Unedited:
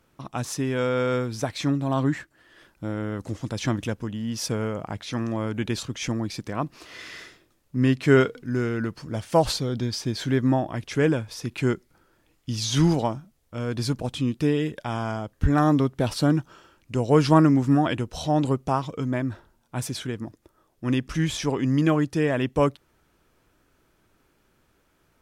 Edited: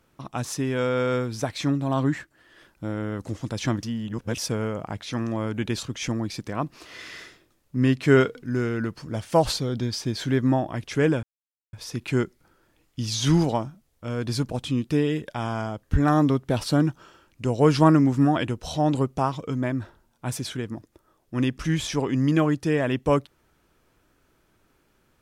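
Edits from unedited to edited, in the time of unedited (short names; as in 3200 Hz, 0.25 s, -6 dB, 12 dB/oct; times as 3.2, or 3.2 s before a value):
3.83–4.38 reverse
11.23 insert silence 0.50 s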